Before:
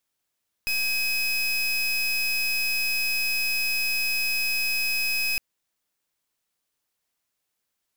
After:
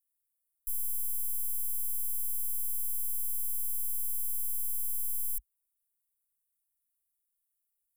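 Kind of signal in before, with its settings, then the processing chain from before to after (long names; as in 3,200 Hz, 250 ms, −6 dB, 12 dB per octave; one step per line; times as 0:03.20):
pulse wave 2,540 Hz, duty 30% −25 dBFS 4.71 s
inverse Chebyshev band-stop filter 100–5,100 Hz, stop band 40 dB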